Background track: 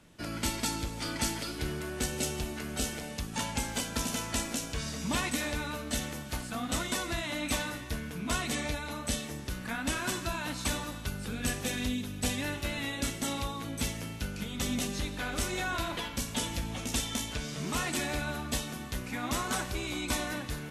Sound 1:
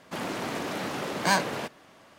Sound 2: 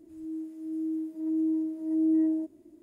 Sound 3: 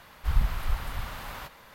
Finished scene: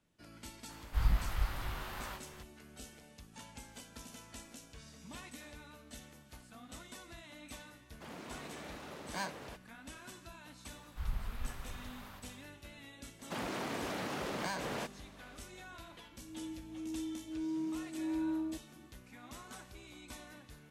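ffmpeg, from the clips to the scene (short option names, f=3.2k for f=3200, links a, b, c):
-filter_complex "[3:a]asplit=2[a][b];[1:a]asplit=2[c][d];[0:a]volume=-18dB[e];[a]flanger=delay=18.5:depth=3.3:speed=2.2[f];[b]aecho=1:1:55.39|183.7:0.282|0.355[g];[d]acompressor=threshold=-29dB:ratio=6:attack=3.2:release=140:knee=1:detection=peak[h];[2:a]asoftclip=type=tanh:threshold=-23.5dB[i];[f]atrim=end=1.74,asetpts=PTS-STARTPTS,volume=-1.5dB,afade=t=in:d=0.004:c=hsin,afade=t=out:st=1.736:d=0.004:c=hsin,adelay=690[j];[c]atrim=end=2.18,asetpts=PTS-STARTPTS,volume=-16dB,afade=t=in:d=0.004:c=hsin,afade=t=out:st=2.176:d=0.004:c=hsin,adelay=7890[k];[g]atrim=end=1.74,asetpts=PTS-STARTPTS,volume=-13.5dB,afade=t=in:d=0.004:c=hsin,afade=t=out:st=1.736:d=0.004:c=hsin,adelay=10720[l];[h]atrim=end=2.18,asetpts=PTS-STARTPTS,volume=-5dB,afade=t=in:d=0.004:c=hsin,afade=t=out:st=2.176:d=0.004:c=hsin,adelay=13190[m];[i]atrim=end=2.82,asetpts=PTS-STARTPTS,volume=-8dB,afade=t=in:d=0.004:c=hsin,afade=t=out:st=2.816:d=0.004:c=hsin,adelay=16110[n];[e][j][k][l][m][n]amix=inputs=6:normalize=0"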